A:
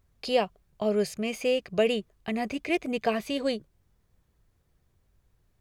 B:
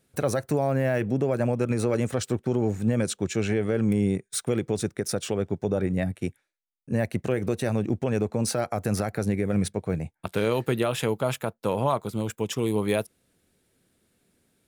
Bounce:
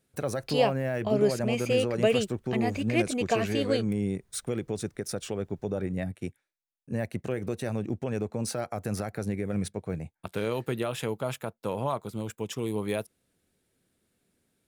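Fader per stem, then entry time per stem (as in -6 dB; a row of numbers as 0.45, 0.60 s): 0.0, -5.5 dB; 0.25, 0.00 s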